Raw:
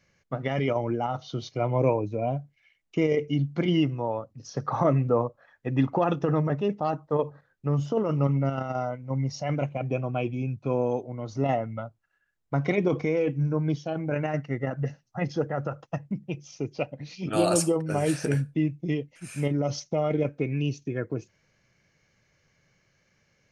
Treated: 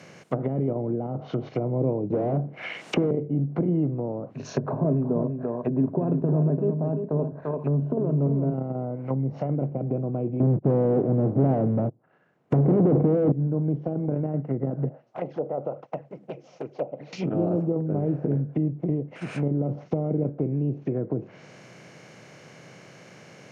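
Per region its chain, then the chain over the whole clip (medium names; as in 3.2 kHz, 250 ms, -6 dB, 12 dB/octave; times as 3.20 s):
2.10–3.11 s: treble shelf 5.4 kHz +10.5 dB + overdrive pedal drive 30 dB, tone 5.8 kHz, clips at -12.5 dBFS + three bands compressed up and down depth 40%
4.34–8.54 s: rippled EQ curve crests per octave 1.5, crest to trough 13 dB + delay 342 ms -11 dB
10.40–13.32 s: low-pass 1.1 kHz + waveshaping leveller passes 5
14.89–17.13 s: band-pass filter 580 Hz, Q 3 + touch-sensitive flanger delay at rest 9.6 ms, full sweep at -33.5 dBFS
whole clip: spectral levelling over time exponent 0.6; high-pass 120 Hz 24 dB/octave; low-pass that closes with the level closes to 400 Hz, closed at -18.5 dBFS; trim -3 dB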